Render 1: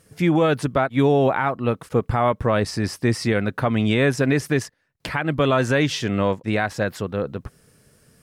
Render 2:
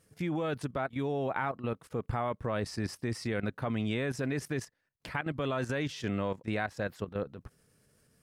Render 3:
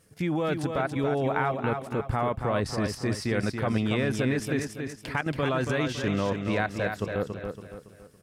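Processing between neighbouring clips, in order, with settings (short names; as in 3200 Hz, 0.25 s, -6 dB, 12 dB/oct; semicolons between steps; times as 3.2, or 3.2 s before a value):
level quantiser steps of 12 dB; gain -7.5 dB
feedback echo 0.28 s, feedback 40%, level -6 dB; gain +5 dB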